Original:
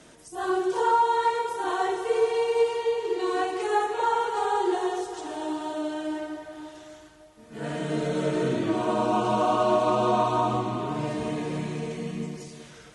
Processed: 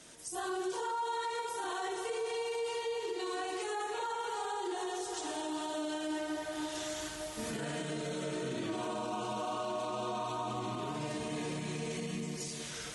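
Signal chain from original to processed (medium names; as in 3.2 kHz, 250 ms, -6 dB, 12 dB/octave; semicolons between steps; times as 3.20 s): recorder AGC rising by 12 dB/s; treble shelf 2.6 kHz +11 dB; peak limiter -21 dBFS, peak gain reduction 10 dB; trim -8 dB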